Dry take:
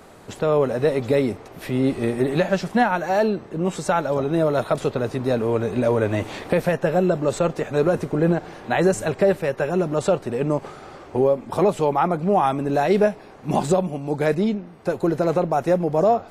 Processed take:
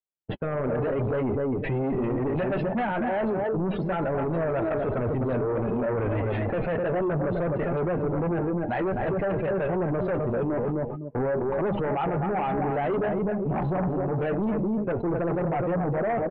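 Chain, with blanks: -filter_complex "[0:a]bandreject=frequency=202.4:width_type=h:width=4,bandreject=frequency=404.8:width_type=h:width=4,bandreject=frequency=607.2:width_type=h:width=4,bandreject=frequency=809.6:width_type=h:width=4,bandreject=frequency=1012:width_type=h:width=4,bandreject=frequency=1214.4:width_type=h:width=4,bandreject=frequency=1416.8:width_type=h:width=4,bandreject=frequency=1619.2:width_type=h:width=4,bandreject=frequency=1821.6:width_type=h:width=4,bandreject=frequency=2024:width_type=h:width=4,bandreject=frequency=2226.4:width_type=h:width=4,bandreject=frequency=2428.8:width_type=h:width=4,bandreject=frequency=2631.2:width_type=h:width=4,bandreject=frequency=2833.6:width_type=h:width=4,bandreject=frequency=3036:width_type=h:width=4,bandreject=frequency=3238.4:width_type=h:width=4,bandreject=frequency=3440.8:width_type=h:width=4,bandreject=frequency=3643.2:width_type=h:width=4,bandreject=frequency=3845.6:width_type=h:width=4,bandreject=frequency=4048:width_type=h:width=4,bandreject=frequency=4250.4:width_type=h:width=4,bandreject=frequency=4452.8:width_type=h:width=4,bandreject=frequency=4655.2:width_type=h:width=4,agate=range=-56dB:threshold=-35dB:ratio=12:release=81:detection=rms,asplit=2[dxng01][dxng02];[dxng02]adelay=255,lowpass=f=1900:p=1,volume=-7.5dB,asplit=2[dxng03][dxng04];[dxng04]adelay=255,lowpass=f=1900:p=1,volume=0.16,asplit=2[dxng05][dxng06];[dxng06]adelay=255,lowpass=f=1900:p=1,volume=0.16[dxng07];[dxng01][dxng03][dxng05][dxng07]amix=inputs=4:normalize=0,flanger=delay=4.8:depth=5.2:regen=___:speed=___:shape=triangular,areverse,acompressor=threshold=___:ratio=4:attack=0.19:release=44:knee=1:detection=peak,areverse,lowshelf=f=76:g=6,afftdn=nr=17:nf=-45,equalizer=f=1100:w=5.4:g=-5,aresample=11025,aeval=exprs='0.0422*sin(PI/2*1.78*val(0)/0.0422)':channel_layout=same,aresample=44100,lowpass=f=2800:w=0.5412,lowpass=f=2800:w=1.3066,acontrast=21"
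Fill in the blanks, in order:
-34, 0.52, -35dB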